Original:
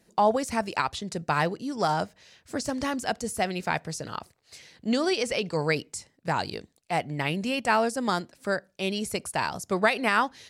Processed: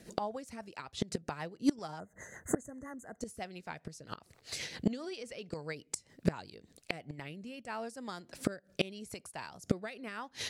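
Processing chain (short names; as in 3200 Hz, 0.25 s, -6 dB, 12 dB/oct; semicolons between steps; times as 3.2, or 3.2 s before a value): spectral gain 1.99–3.21, 2100–6100 Hz -29 dB; rotary speaker horn 7.5 Hz, later 0.8 Hz, at 6.41; flipped gate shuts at -27 dBFS, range -26 dB; gain +11.5 dB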